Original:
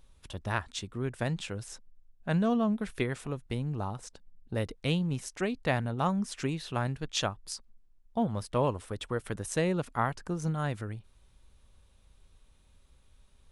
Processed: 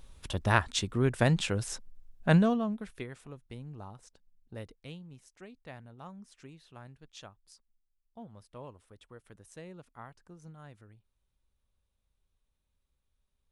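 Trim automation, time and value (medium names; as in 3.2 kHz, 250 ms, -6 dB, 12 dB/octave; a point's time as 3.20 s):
2.34 s +6.5 dB
2.57 s -3 dB
3.10 s -11 dB
4.61 s -11 dB
5.03 s -18.5 dB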